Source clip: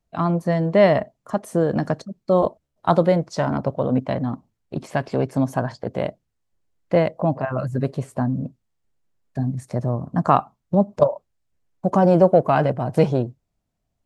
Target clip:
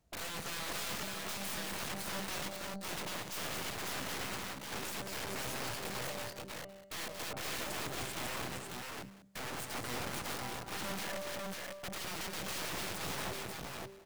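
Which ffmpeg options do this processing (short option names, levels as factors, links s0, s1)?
-af "bandreject=f=195.4:t=h:w=4,bandreject=f=390.8:t=h:w=4,bandreject=f=586.2:t=h:w=4,bandreject=f=781.6:t=h:w=4,bandreject=f=977:t=h:w=4,bandreject=f=1172.4:t=h:w=4,bandreject=f=1367.8:t=h:w=4,bandreject=f=1563.2:t=h:w=4,bandreject=f=1758.6:t=h:w=4,bandreject=f=1954:t=h:w=4,bandreject=f=2149.4:t=h:w=4,bandreject=f=2344.8:t=h:w=4,bandreject=f=2540.2:t=h:w=4,bandreject=f=2735.6:t=h:w=4,bandreject=f=2931:t=h:w=4,bandreject=f=3126.4:t=h:w=4,bandreject=f=3321.8:t=h:w=4,bandreject=f=3517.2:t=h:w=4,bandreject=f=3712.6:t=h:w=4,bandreject=f=3908:t=h:w=4,bandreject=f=4103.4:t=h:w=4,bandreject=f=4298.8:t=h:w=4,bandreject=f=4494.2:t=h:w=4,bandreject=f=4689.6:t=h:w=4,bandreject=f=4885:t=h:w=4,bandreject=f=5080.4:t=h:w=4,bandreject=f=5275.8:t=h:w=4,bandreject=f=5471.2:t=h:w=4,bandreject=f=5666.6:t=h:w=4,acompressor=threshold=0.0316:ratio=16,alimiter=level_in=1.78:limit=0.0631:level=0:latency=1:release=167,volume=0.562,aeval=exprs='(mod(133*val(0)+1,2)-1)/133':c=same,highpass=42,aecho=1:1:176|231|531|547|741:0.266|0.447|0.316|0.668|0.112,aeval=exprs='0.0211*(cos(1*acos(clip(val(0)/0.0211,-1,1)))-cos(1*PI/2))+0.00299*(cos(6*acos(clip(val(0)/0.0211,-1,1)))-cos(6*PI/2))':c=same,volume=1.78"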